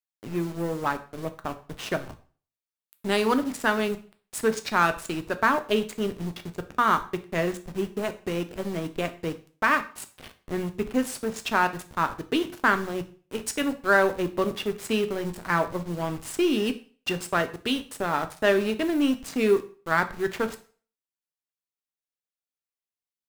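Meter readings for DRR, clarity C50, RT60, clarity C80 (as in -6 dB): 8.5 dB, 15.0 dB, 0.40 s, 19.0 dB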